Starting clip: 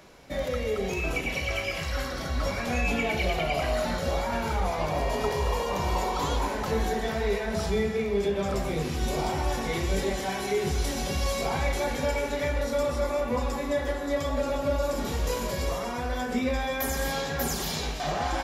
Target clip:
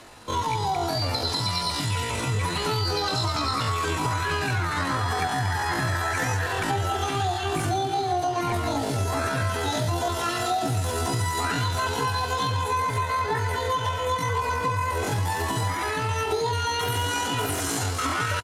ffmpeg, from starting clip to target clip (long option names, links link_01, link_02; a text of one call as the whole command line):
ffmpeg -i in.wav -filter_complex "[0:a]lowpass=frequency=6500:width=0.5412,lowpass=frequency=6500:width=1.3066,bandreject=frequency=650:width=17,asetrate=78577,aresample=44100,atempo=0.561231,asplit=2[link_01][link_02];[link_02]aecho=0:1:513|1026|1539|2052:0.112|0.0606|0.0327|0.0177[link_03];[link_01][link_03]amix=inputs=2:normalize=0,acompressor=threshold=-28dB:ratio=6,volume=6dB" out.wav